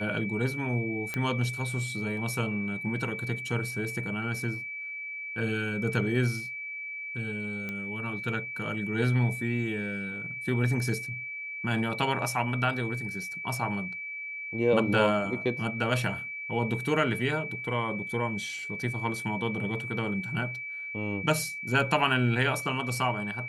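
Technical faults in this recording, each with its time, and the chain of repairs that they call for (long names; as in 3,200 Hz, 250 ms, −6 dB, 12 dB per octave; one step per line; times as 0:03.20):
whistle 2,300 Hz −35 dBFS
0:01.14: click −17 dBFS
0:07.69: click −22 dBFS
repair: click removal
notch filter 2,300 Hz, Q 30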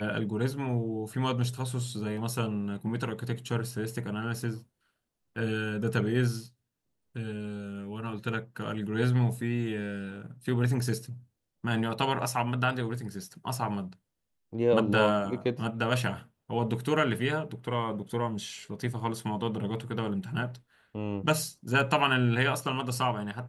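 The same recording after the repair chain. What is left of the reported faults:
0:01.14: click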